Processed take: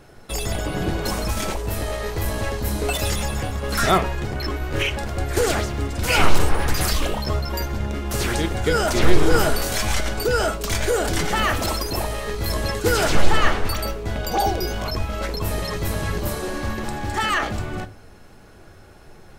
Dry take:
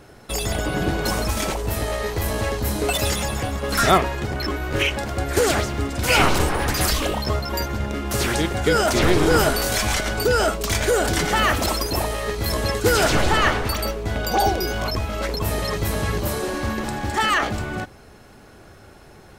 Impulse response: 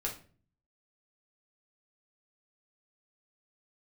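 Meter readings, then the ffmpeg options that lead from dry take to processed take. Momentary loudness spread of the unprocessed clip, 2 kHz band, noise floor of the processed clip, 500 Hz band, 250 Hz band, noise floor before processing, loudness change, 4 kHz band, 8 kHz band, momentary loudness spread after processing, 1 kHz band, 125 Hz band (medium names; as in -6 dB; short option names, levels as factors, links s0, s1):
8 LU, -2.5 dB, -45 dBFS, -2.0 dB, -1.5 dB, -46 dBFS, -1.5 dB, -2.0 dB, -2.0 dB, 8 LU, -2.0 dB, -0.5 dB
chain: -filter_complex "[0:a]asplit=2[s0][s1];[1:a]atrim=start_sample=2205,lowshelf=f=75:g=12[s2];[s1][s2]afir=irnorm=-1:irlink=0,volume=0.282[s3];[s0][s3]amix=inputs=2:normalize=0,volume=0.631"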